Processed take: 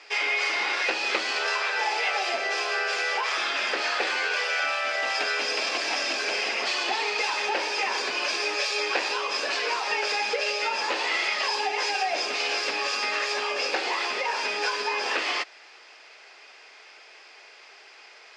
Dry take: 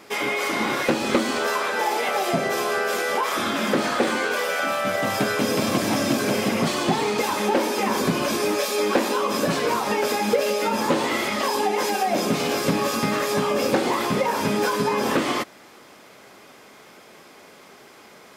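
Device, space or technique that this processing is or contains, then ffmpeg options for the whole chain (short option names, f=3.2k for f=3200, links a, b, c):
phone speaker on a table: -af "highpass=f=470:w=0.5412,highpass=f=470:w=1.3066,equalizer=f=550:t=q:w=4:g=-7,equalizer=f=1.1k:t=q:w=4:g=-4,equalizer=f=1.8k:t=q:w=4:g=4,equalizer=f=2.6k:t=q:w=4:g=9,equalizer=f=4.8k:t=q:w=4:g=8,lowpass=f=6.7k:w=0.5412,lowpass=f=6.7k:w=1.3066,volume=-3dB"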